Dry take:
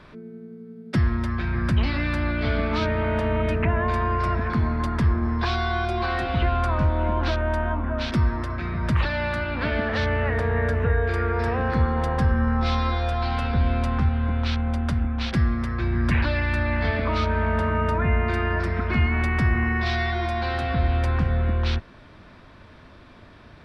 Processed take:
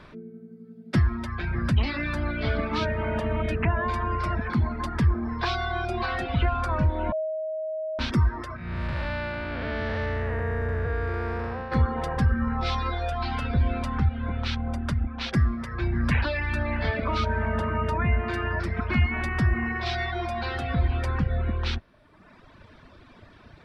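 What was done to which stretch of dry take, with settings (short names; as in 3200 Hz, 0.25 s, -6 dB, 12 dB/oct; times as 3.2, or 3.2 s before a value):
7.12–7.99 bleep 630 Hz -23 dBFS
8.56–11.72 time blur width 0.438 s
whole clip: reverb removal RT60 1.2 s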